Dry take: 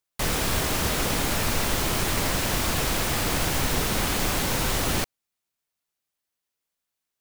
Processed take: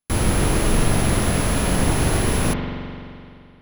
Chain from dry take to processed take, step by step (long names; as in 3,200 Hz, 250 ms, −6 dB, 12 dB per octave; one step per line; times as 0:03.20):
samples sorted by size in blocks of 8 samples
change of speed 1.99×
low-shelf EQ 420 Hz +8.5 dB
convolution reverb RT60 2.5 s, pre-delay 43 ms, DRR 2.5 dB